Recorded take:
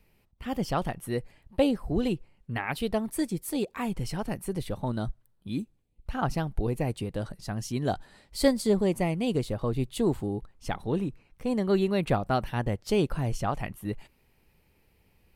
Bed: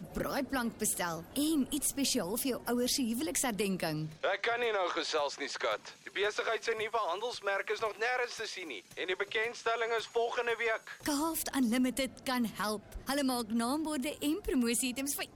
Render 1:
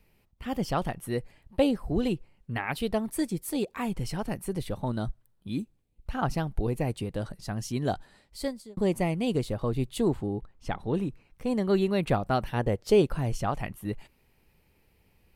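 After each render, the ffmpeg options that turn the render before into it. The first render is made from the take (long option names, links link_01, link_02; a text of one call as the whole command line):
ffmpeg -i in.wav -filter_complex "[0:a]asettb=1/sr,asplit=3[link_01][link_02][link_03];[link_01]atrim=end=10.084[link_04];[link_02]atrim=start=10.08:end=10.94,asetpts=PTS-STARTPTS,afade=type=in:duration=0.004:curve=qsin,afade=type=out:start_time=0.856:duration=0.004:curve=qsin,lowpass=frequency=3500:poles=1[link_05];[link_03]atrim=start=10.936[link_06];[link_04][link_05]acrossfade=duration=0.004:curve1=hsin:curve2=qsin[link_07];[link_07][link_06]acrossfade=duration=0.004:curve1=qsin:curve2=hsin,asettb=1/sr,asplit=3[link_08][link_09][link_10];[link_08]atrim=end=12.544[link_11];[link_09]atrim=start=12.54:end=13.02,asetpts=PTS-STARTPTS,afade=type=in:duration=0.004:curve=qsin,afade=type=out:start_time=0.476:duration=0.004:curve=qsin,equalizer=frequency=460:width_type=o:width=0.77:gain=7[link_12];[link_10]atrim=start=13.016[link_13];[link_11][link_12]acrossfade=duration=0.004:curve1=hsin:curve2=qsin[link_14];[link_14][link_13]acrossfade=duration=0.004:curve1=qsin:curve2=hsin,asplit=2[link_15][link_16];[link_15]atrim=end=8.77,asetpts=PTS-STARTPTS,afade=type=out:start_time=7.86:duration=0.91[link_17];[link_16]atrim=start=8.77,asetpts=PTS-STARTPTS,afade=type=in:duration=0.004:curve=hsin[link_18];[link_17][link_18]concat=n=2:v=0:a=1" out.wav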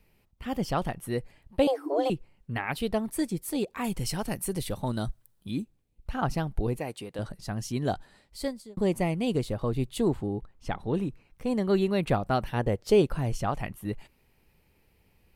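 ffmpeg -i in.wav -filter_complex "[0:a]asettb=1/sr,asplit=3[link_01][link_02][link_03];[link_01]atrim=end=1.674[link_04];[link_02]atrim=start=1.67:end=2.1,asetpts=PTS-STARTPTS,afade=type=in:duration=0.004:curve=qsin,afade=type=out:start_time=0.426:duration=0.004:curve=qsin,afreqshift=270[link_05];[link_03]atrim=start=2.096[link_06];[link_04][link_05]acrossfade=duration=0.004:curve1=hsin:curve2=qsin[link_07];[link_07][link_06]acrossfade=duration=0.004:curve1=qsin:curve2=hsin,asettb=1/sr,asplit=3[link_08][link_09][link_10];[link_08]atrim=end=3.844[link_11];[link_09]atrim=start=3.84:end=5.51,asetpts=PTS-STARTPTS,afade=type=in:duration=0.004:curve=qsin,afade=type=out:start_time=1.666:duration=0.004:curve=qsin,highshelf=frequency=3600:gain=10[link_12];[link_10]atrim=start=5.506[link_13];[link_11][link_12]acrossfade=duration=0.004:curve1=hsin:curve2=qsin[link_14];[link_14][link_13]acrossfade=duration=0.004:curve1=qsin:curve2=hsin,asettb=1/sr,asplit=3[link_15][link_16][link_17];[link_15]atrim=end=6.794[link_18];[link_16]atrim=start=6.79:end=7.19,asetpts=PTS-STARTPTS,afade=type=in:duration=0.004:curve=qsin,afade=type=out:start_time=0.396:duration=0.004:curve=qsin,highpass=frequency=490:poles=1[link_19];[link_17]atrim=start=7.186[link_20];[link_18][link_19]acrossfade=duration=0.004:curve1=hsin:curve2=qsin[link_21];[link_21][link_20]acrossfade=duration=0.004:curve1=qsin:curve2=hsin" out.wav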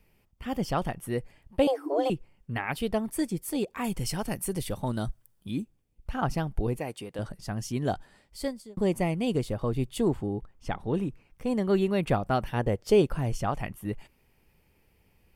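ffmpeg -i in.wav -af "bandreject=frequency=4000:width=10" out.wav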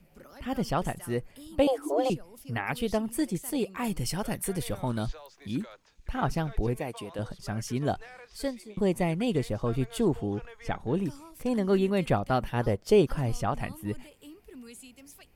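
ffmpeg -i in.wav -i bed.wav -filter_complex "[1:a]volume=-16dB[link_01];[0:a][link_01]amix=inputs=2:normalize=0" out.wav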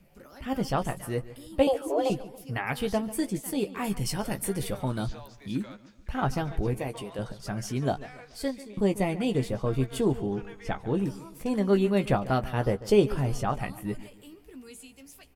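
ffmpeg -i in.wav -filter_complex "[0:a]asplit=2[link_01][link_02];[link_02]adelay=15,volume=-8dB[link_03];[link_01][link_03]amix=inputs=2:normalize=0,asplit=2[link_04][link_05];[link_05]adelay=143,lowpass=frequency=3700:poles=1,volume=-16.5dB,asplit=2[link_06][link_07];[link_07]adelay=143,lowpass=frequency=3700:poles=1,volume=0.42,asplit=2[link_08][link_09];[link_09]adelay=143,lowpass=frequency=3700:poles=1,volume=0.42,asplit=2[link_10][link_11];[link_11]adelay=143,lowpass=frequency=3700:poles=1,volume=0.42[link_12];[link_04][link_06][link_08][link_10][link_12]amix=inputs=5:normalize=0" out.wav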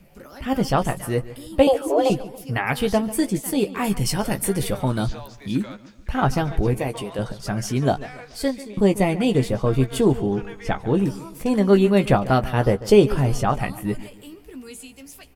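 ffmpeg -i in.wav -af "volume=7.5dB,alimiter=limit=-3dB:level=0:latency=1" out.wav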